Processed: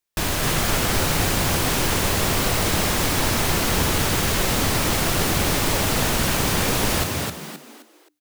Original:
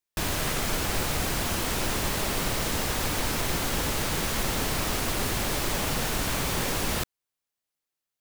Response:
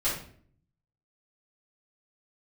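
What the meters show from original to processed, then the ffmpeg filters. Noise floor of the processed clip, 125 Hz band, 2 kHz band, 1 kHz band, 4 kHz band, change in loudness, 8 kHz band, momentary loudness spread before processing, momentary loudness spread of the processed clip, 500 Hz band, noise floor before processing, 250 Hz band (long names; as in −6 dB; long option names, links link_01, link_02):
−54 dBFS, +8.5 dB, +7.0 dB, +7.0 dB, +7.0 dB, +7.0 dB, +7.0 dB, 0 LU, 3 LU, +7.0 dB, below −85 dBFS, +7.5 dB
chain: -filter_complex "[0:a]asplit=5[link_01][link_02][link_03][link_04][link_05];[link_02]adelay=262,afreqshift=74,volume=-3.5dB[link_06];[link_03]adelay=524,afreqshift=148,volume=-12.9dB[link_07];[link_04]adelay=786,afreqshift=222,volume=-22.2dB[link_08];[link_05]adelay=1048,afreqshift=296,volume=-31.6dB[link_09];[link_01][link_06][link_07][link_08][link_09]amix=inputs=5:normalize=0,volume=5dB"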